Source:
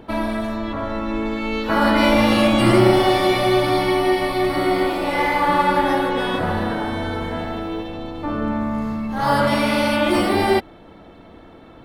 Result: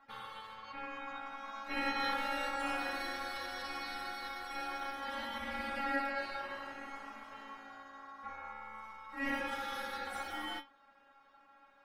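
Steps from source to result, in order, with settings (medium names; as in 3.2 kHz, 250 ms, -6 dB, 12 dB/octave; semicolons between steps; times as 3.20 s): inharmonic resonator 270 Hz, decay 0.23 s, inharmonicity 0.002; ring modulator 1.1 kHz; trim -4.5 dB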